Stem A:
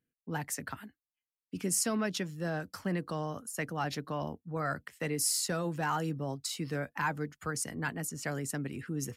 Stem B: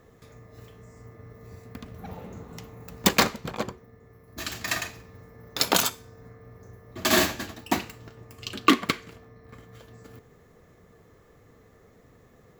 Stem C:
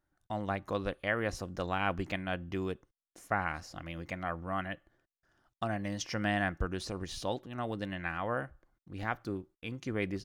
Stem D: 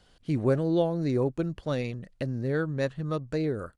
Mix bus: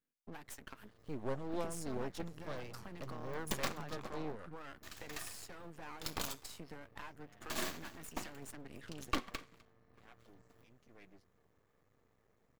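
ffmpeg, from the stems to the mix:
-filter_complex "[0:a]highpass=190,acompressor=threshold=0.00794:ratio=8,volume=0.891,asplit=2[s0][s1];[1:a]adelay=450,volume=0.188,asplit=2[s2][s3];[s3]volume=0.0708[s4];[2:a]asplit=2[s5][s6];[s6]adelay=6.8,afreqshift=-1.4[s7];[s5][s7]amix=inputs=2:normalize=1,adelay=1000,volume=0.106[s8];[3:a]adelay=800,volume=0.316[s9];[s1]apad=whole_len=496041[s10];[s8][s10]sidechaincompress=threshold=0.00158:ratio=8:attack=12:release=390[s11];[s4]aecho=0:1:253:1[s12];[s0][s2][s11][s9][s12]amix=inputs=5:normalize=0,equalizer=f=1100:w=6.3:g=3.5,aeval=exprs='max(val(0),0)':c=same"

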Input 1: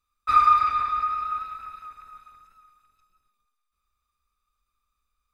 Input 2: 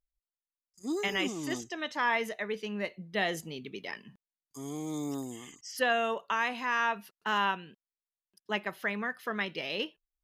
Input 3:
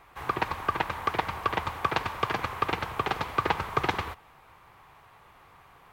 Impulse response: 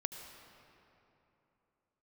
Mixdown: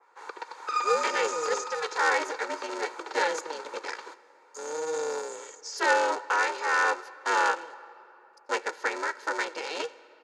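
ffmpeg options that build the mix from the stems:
-filter_complex "[0:a]aeval=exprs='max(val(0),0)':c=same,adelay=400,volume=0.376[s0];[1:a]bandreject=f=530:w=17,aeval=exprs='val(0)*sgn(sin(2*PI*160*n/s))':c=same,volume=0.708,asplit=2[s1][s2];[s2]volume=0.316[s3];[2:a]acompressor=threshold=0.0355:ratio=10,adynamicequalizer=threshold=0.00316:dfrequency=2600:dqfactor=0.7:tfrequency=2600:tqfactor=0.7:attack=5:release=100:ratio=0.375:range=4:mode=boostabove:tftype=highshelf,volume=0.266[s4];[3:a]atrim=start_sample=2205[s5];[s3][s5]afir=irnorm=-1:irlink=0[s6];[s0][s1][s4][s6]amix=inputs=4:normalize=0,highpass=f=290:w=0.5412,highpass=f=290:w=1.3066,equalizer=f=490:t=q:w=4:g=8,equalizer=f=940:t=q:w=4:g=7,equalizer=f=1500:t=q:w=4:g=8,equalizer=f=3000:t=q:w=4:g=-6,equalizer=f=4600:t=q:w=4:g=6,equalizer=f=6700:t=q:w=4:g=9,lowpass=f=8700:w=0.5412,lowpass=f=8700:w=1.3066,aecho=1:1:2.2:0.45"

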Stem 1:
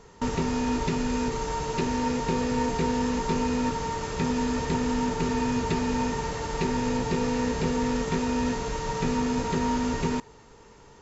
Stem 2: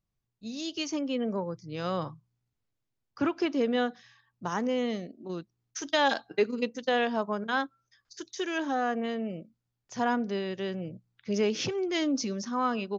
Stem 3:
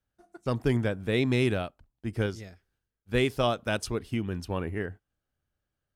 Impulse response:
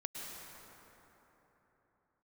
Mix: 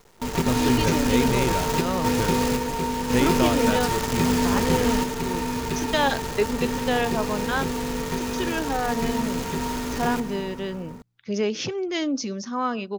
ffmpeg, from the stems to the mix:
-filter_complex "[0:a]acrusher=bits=6:dc=4:mix=0:aa=0.000001,volume=1.33,asplit=2[s0][s1];[s1]volume=0.355[s2];[1:a]volume=1.33[s3];[2:a]volume=1,asplit=2[s4][s5];[s5]apad=whole_len=485980[s6];[s0][s6]sidechaingate=range=0.398:threshold=0.00316:ratio=16:detection=peak[s7];[3:a]atrim=start_sample=2205[s8];[s2][s8]afir=irnorm=-1:irlink=0[s9];[s7][s3][s4][s9]amix=inputs=4:normalize=0"

